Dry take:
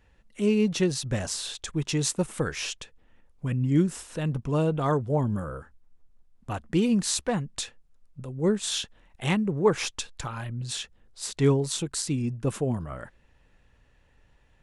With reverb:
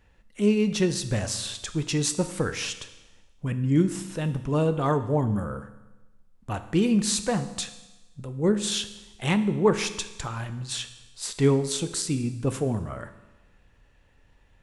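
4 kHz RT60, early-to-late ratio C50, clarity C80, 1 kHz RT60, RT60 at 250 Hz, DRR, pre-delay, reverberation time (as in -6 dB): 1.1 s, 12.5 dB, 14.0 dB, 1.1 s, 1.1 s, 9.5 dB, 10 ms, 1.1 s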